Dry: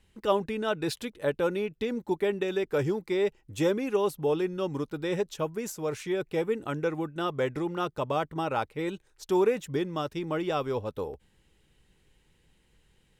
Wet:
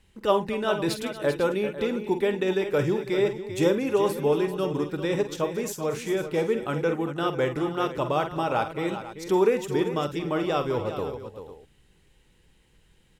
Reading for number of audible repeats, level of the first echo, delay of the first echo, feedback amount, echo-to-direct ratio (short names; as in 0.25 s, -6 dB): 4, -10.5 dB, 48 ms, no steady repeat, -6.5 dB